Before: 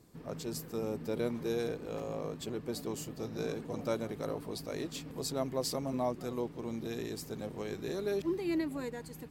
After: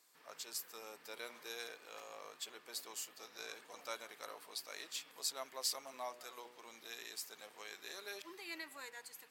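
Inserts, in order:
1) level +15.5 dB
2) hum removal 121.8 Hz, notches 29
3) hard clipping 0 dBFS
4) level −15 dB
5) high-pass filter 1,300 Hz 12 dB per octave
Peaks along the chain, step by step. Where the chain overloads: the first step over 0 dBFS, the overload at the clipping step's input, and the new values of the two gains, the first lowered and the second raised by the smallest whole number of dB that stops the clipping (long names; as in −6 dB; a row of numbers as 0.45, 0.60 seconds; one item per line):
−4.0, −4.0, −4.0, −19.0, −23.5 dBFS
no step passes full scale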